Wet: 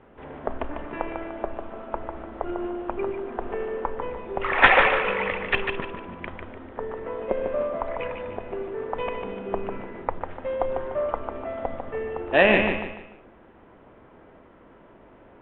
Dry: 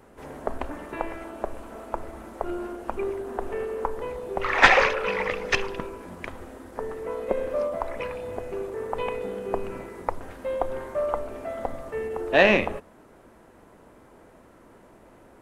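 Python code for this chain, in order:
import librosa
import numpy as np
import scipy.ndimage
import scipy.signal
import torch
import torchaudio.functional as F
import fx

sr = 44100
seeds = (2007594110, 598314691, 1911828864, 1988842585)

y = scipy.signal.sosfilt(scipy.signal.butter(12, 3500.0, 'lowpass', fs=sr, output='sos'), x)
y = fx.echo_feedback(y, sr, ms=148, feedback_pct=35, wet_db=-6)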